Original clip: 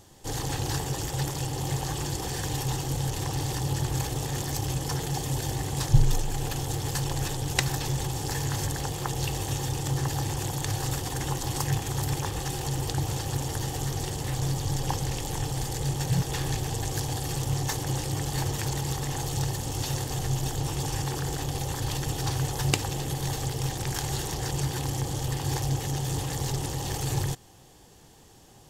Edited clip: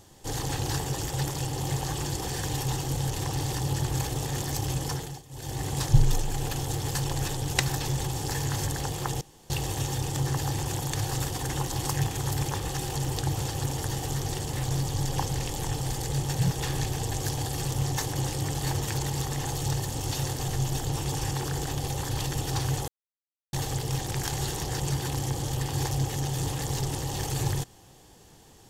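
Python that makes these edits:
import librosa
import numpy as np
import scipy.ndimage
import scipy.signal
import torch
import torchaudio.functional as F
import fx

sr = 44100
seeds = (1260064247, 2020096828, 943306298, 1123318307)

y = fx.edit(x, sr, fx.fade_down_up(start_s=4.86, length_s=0.8, db=-20.0, fade_s=0.37),
    fx.insert_room_tone(at_s=9.21, length_s=0.29),
    fx.silence(start_s=22.59, length_s=0.65), tone=tone)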